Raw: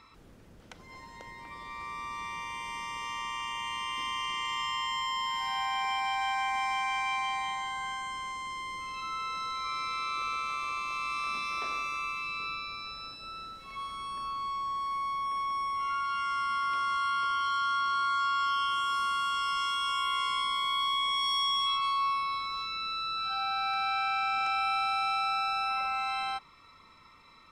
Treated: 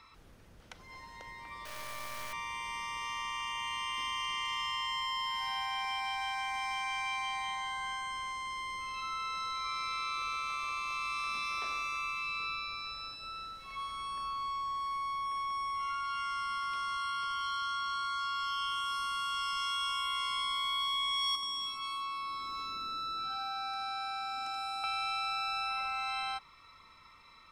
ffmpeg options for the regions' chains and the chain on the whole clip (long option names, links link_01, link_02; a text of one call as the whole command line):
ffmpeg -i in.wav -filter_complex "[0:a]asettb=1/sr,asplit=3[link_01][link_02][link_03];[link_01]atrim=end=1.654[link_04];[link_02]atrim=start=1.65:end=2.33,asetpts=PTS-STARTPTS,afade=type=in:duration=0.004:curve=qsin,afade=type=out:start_time=0.676:duration=0.004:curve=qsin,aeval=exprs='val(0)+0.00708*sin(2*PI*610*n/s)':channel_layout=same,acrusher=bits=4:dc=4:mix=0:aa=0.000001[link_05];[link_03]atrim=start=2.326[link_06];[link_04][link_05]acrossfade=duration=0.004:curve1=hsin:curve2=qsin[link_07];[link_07][link_06]acrossfade=duration=0.004:curve1=qsin:curve2=hsin,asettb=1/sr,asplit=3[link_08][link_09][link_10];[link_08]atrim=end=21.354[link_11];[link_09]atrim=start=21.35:end=24.84,asetpts=PTS-STARTPTS,afade=type=in:duration=0.004:curve=qsin,afade=type=out:start_time=3.486:duration=0.004:curve=qsin,acrossover=split=1300|5300[link_12][link_13][link_14];[link_12]acompressor=threshold=-41dB:ratio=4[link_15];[link_13]acompressor=threshold=-43dB:ratio=4[link_16];[link_14]acompressor=threshold=-47dB:ratio=4[link_17];[link_15][link_16][link_17]amix=inputs=3:normalize=0,equalizer=frequency=280:width_type=o:width=1:gain=13,aecho=1:1:79:0.531,atrim=end_sample=153909[link_18];[link_10]atrim=start=24.836[link_19];[link_11][link_18]acrossfade=duration=0.004:curve1=hsin:curve2=qsin[link_20];[link_20][link_19]acrossfade=duration=0.004:curve1=qsin:curve2=hsin,equalizer=frequency=260:width=0.54:gain=-6.5,bandreject=frequency=7400:width=17,acrossover=split=320|3000[link_21][link_22][link_23];[link_22]acompressor=threshold=-34dB:ratio=6[link_24];[link_21][link_24][link_23]amix=inputs=3:normalize=0" out.wav